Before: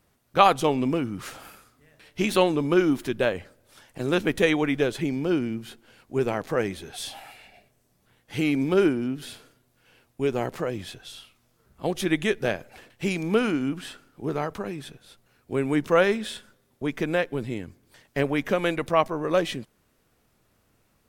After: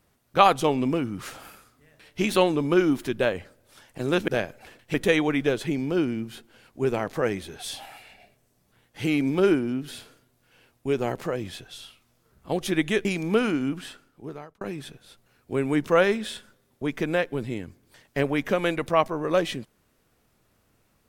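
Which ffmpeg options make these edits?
-filter_complex "[0:a]asplit=5[a][b][c][d][e];[a]atrim=end=4.282[f];[b]atrim=start=12.388:end=13.052[g];[c]atrim=start=4.278:end=12.392[h];[d]atrim=start=13.048:end=14.61,asetpts=PTS-STARTPTS,afade=t=out:st=0.702:d=0.86[i];[e]atrim=start=14.61,asetpts=PTS-STARTPTS,afade=t=in:d=0.004:c=hsin[j];[f][g]acrossfade=d=0.004:c1=hsin:c2=hsin[k];[k][h]acrossfade=d=0.004:c1=hsin:c2=hsin[l];[i][j]concat=n=2:v=0:a=1[m];[l][m]acrossfade=d=0.004:c1=hsin:c2=hsin"

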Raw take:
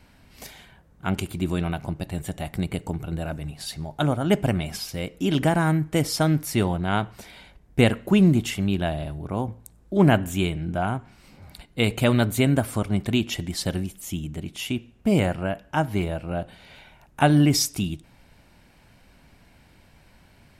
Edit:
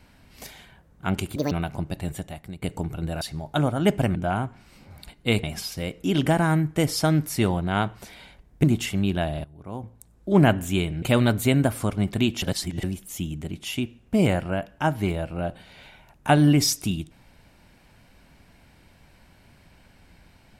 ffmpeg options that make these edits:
-filter_complex "[0:a]asplit=12[a][b][c][d][e][f][g][h][i][j][k][l];[a]atrim=end=1.364[m];[b]atrim=start=1.36:end=1.61,asetpts=PTS-STARTPTS,asetrate=71883,aresample=44100[n];[c]atrim=start=1.606:end=2.72,asetpts=PTS-STARTPTS,afade=t=out:st=0.614:d=0.5:c=qua:silence=0.237137[o];[d]atrim=start=2.72:end=3.312,asetpts=PTS-STARTPTS,afade=t=in:d=0.004:c=hsin:silence=0.237137[p];[e]atrim=start=3.658:end=4.602[q];[f]atrim=start=10.668:end=11.952[r];[g]atrim=start=4.598:end=7.802[s];[h]atrim=start=8.278:end=9.09,asetpts=PTS-STARTPTS,afade=t=out:st=0.808:d=0.004:c=hsin:silence=0.105925[t];[i]atrim=start=9.09:end=10.672,asetpts=PTS-STARTPTS,afade=t=in:d=0.9:silence=0.105925[u];[j]atrim=start=11.948:end=13.352[v];[k]atrim=start=13.348:end=13.762,asetpts=PTS-STARTPTS,areverse[w];[l]atrim=start=13.758[x];[m][n]acrossfade=d=0.004:c1=hsin:c2=hsin[y];[o][p]concat=n=2:v=0:a=1[z];[y][z]acrossfade=d=0.004:c1=hsin:c2=hsin[aa];[aa][q]acrossfade=d=0.004:c1=hsin:c2=hsin[ab];[ab][r]acrossfade=d=0.004:c1=hsin:c2=hsin[ac];[ac][s]acrossfade=d=0.004:c1=hsin:c2=hsin[ad];[t][u]concat=n=2:v=0:a=1[ae];[ad][ae]acrossfade=d=0.004:c1=hsin:c2=hsin[af];[af][v]acrossfade=d=0.004:c1=hsin:c2=hsin[ag];[ag][w]acrossfade=d=0.004:c1=hsin:c2=hsin[ah];[ah][x]acrossfade=d=0.004:c1=hsin:c2=hsin"

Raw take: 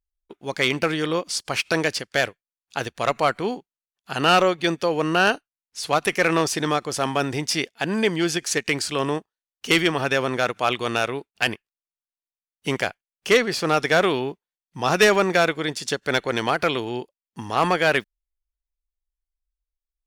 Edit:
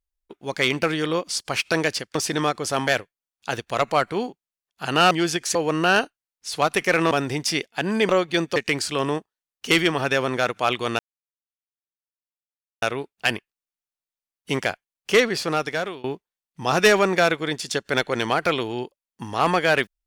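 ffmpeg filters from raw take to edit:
-filter_complex "[0:a]asplit=10[a][b][c][d][e][f][g][h][i][j];[a]atrim=end=2.152[k];[b]atrim=start=6.418:end=7.142[l];[c]atrim=start=2.148:end=4.392[m];[d]atrim=start=8.118:end=8.562[n];[e]atrim=start=4.858:end=6.422[o];[f]atrim=start=7.138:end=8.122[p];[g]atrim=start=4.388:end=4.862[q];[h]atrim=start=8.558:end=10.99,asetpts=PTS-STARTPTS,afade=t=out:st=2.428:d=0.004:c=hsin,apad=pad_dur=1.83[r];[i]atrim=start=10.99:end=14.21,asetpts=PTS-STARTPTS,afade=t=in:d=0.004:c=hsin,afade=t=out:st=2.51:d=0.71:silence=0.0749894[s];[j]atrim=start=14.21,asetpts=PTS-STARTPTS,afade=t=in:d=0.004:c=hsin:silence=0.0749894[t];[k][l]acrossfade=d=0.004:c1=hsin:c2=hsin[u];[u][m]acrossfade=d=0.004:c1=hsin:c2=hsin[v];[v][n]acrossfade=d=0.004:c1=hsin:c2=hsin[w];[w][o]acrossfade=d=0.004:c1=hsin:c2=hsin[x];[x][p]acrossfade=d=0.004:c1=hsin:c2=hsin[y];[y][q]acrossfade=d=0.004:c1=hsin:c2=hsin[z];[r][s][t]concat=n=3:v=0:a=1[aa];[z][aa]acrossfade=d=0.004:c1=hsin:c2=hsin"

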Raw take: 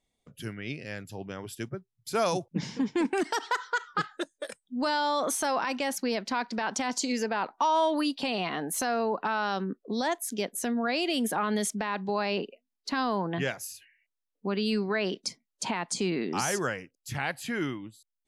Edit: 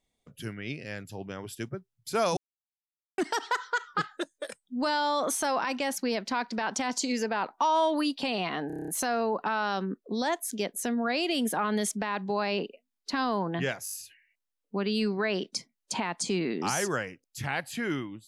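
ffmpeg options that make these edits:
-filter_complex "[0:a]asplit=14[a][b][c][d][e][f][g][h][i][j][k][l][m][n];[a]atrim=end=2.37,asetpts=PTS-STARTPTS,afade=t=out:st=2.366:d=0.004:c=hsin[o];[b]atrim=start=2.37:end=3.18,asetpts=PTS-STARTPTS,volume=0[p];[c]atrim=start=3.18:end=8.702,asetpts=PTS-STARTPTS,afade=t=in:d=0.004:c=hsin[q];[d]atrim=start=8.668:end=8.702[r];[e]atrim=start=8.668:end=8.702[s];[f]atrim=start=8.668:end=8.702[t];[g]atrim=start=8.668:end=8.702[u];[h]atrim=start=8.668:end=8.702[v];[i]atrim=start=8.668:end=8.702[w];[j]atrim=start=8.668:end=13.652[x];[k]atrim=start=13.628:end=13.652[y];[l]atrim=start=13.628:end=13.652[z];[m]atrim=start=13.628:end=13.652[aa];[n]atrim=start=13.628[ab];[o][p][q]concat=n=3:v=0:a=1[ac];[ac][r]acrossfade=d=0.004:c1=hsin:c2=hsin[ad];[ad][s]acrossfade=d=0.004:c1=hsin:c2=hsin[ae];[ae][t]acrossfade=d=0.004:c1=hsin:c2=hsin[af];[af][u]acrossfade=d=0.004:c1=hsin:c2=hsin[ag];[ag][v]acrossfade=d=0.004:c1=hsin:c2=hsin[ah];[ah][w]acrossfade=d=0.004:c1=hsin:c2=hsin[ai];[ai][x]acrossfade=d=0.004:c1=hsin:c2=hsin[aj];[aj][y]acrossfade=d=0.004:c1=hsin:c2=hsin[ak];[ak][z]acrossfade=d=0.004:c1=hsin:c2=hsin[al];[al][aa]acrossfade=d=0.004:c1=hsin:c2=hsin[am];[am][ab]acrossfade=d=0.004:c1=hsin:c2=hsin"

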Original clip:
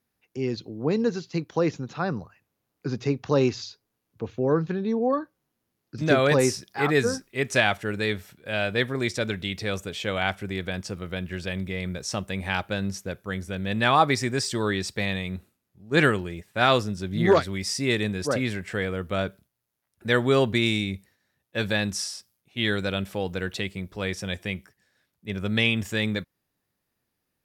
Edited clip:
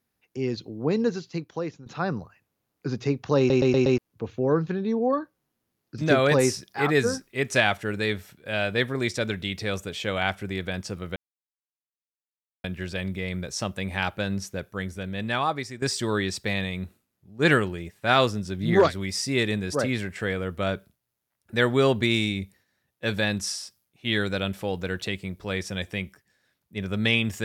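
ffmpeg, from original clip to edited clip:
-filter_complex "[0:a]asplit=9[a][b][c][d][e][f][g][h][i];[a]atrim=end=1.86,asetpts=PTS-STARTPTS,afade=t=out:st=1.07:d=0.79:silence=0.188365[j];[b]atrim=start=1.86:end=3.502,asetpts=PTS-STARTPTS,afade=t=in:d=0.004:c=hsin:silence=0.188365[k];[c]atrim=start=3.378:end=3.502[l];[d]atrim=start=3.378:end=3.502[m];[e]atrim=start=3.378:end=3.502[n];[f]atrim=start=3.378:end=3.502[o];[g]atrim=start=3.978:end=11.16,asetpts=PTS-STARTPTS,afade=t=out:st=7.178:d=0.004:c=hsin,apad=pad_dur=1.48[p];[h]atrim=start=11.16:end=14.34,asetpts=PTS-STARTPTS,afade=t=in:d=0.004:c=hsin,afade=t=out:st=2.1:d=1.08:silence=0.199526[q];[i]atrim=start=14.34,asetpts=PTS-STARTPTS,afade=t=in:d=0.004:c=hsin:silence=0.199526[r];[j][k]concat=n=2:v=0:a=1[s];[s][l]acrossfade=d=0.004:c1=hsin:c2=hsin[t];[t][m]acrossfade=d=0.004:c1=hsin:c2=hsin[u];[u][n]acrossfade=d=0.004:c1=hsin:c2=hsin[v];[v][o]acrossfade=d=0.004:c1=hsin:c2=hsin[w];[p][q][r]concat=n=3:v=0:a=1[x];[w][x]acrossfade=d=0.004:c1=hsin:c2=hsin"

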